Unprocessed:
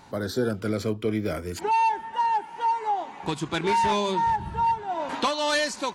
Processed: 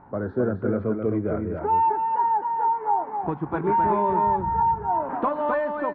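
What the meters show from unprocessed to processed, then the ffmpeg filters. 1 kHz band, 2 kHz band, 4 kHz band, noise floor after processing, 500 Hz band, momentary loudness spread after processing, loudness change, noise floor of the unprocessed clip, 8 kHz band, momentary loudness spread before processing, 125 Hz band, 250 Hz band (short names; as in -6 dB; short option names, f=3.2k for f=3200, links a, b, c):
+2.5 dB, -6.0 dB, under -25 dB, -39 dBFS, +2.5 dB, 6 LU, +2.0 dB, -43 dBFS, under -40 dB, 7 LU, +2.5 dB, +2.5 dB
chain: -af "lowpass=f=1.4k:w=0.5412,lowpass=f=1.4k:w=1.3066,aecho=1:1:261:0.562,volume=1.5dB"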